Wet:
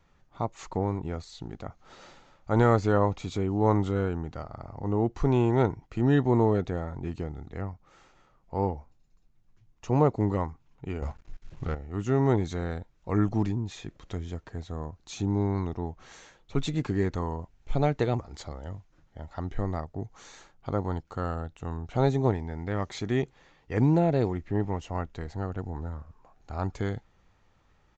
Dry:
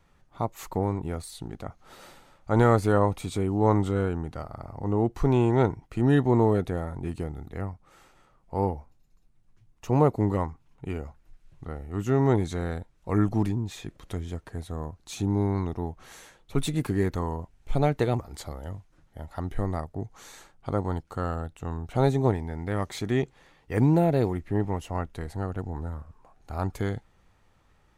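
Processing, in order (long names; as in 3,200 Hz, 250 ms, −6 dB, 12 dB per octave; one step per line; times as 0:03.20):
0:11.02–0:11.75: leveller curve on the samples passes 3
downsampling to 16,000 Hz
level −1.5 dB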